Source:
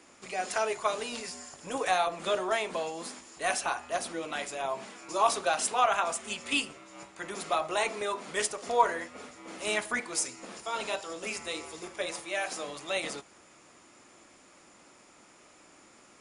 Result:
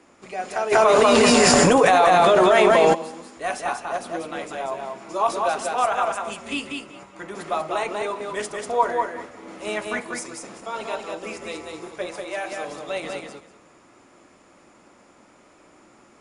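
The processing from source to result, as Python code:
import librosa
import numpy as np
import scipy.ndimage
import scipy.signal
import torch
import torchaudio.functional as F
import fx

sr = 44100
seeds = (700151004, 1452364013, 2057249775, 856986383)

y = fx.high_shelf(x, sr, hz=2200.0, db=-10.5)
y = fx.echo_feedback(y, sr, ms=191, feedback_pct=17, wet_db=-4.0)
y = fx.env_flatten(y, sr, amount_pct=100, at=(0.71, 2.93), fade=0.02)
y = y * librosa.db_to_amplitude(5.0)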